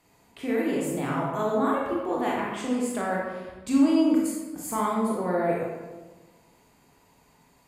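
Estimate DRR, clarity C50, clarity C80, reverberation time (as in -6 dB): -4.0 dB, 0.0 dB, 3.0 dB, 1.3 s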